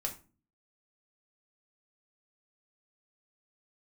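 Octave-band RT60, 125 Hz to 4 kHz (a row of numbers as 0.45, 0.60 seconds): 0.65, 0.65, 0.35, 0.30, 0.30, 0.25 seconds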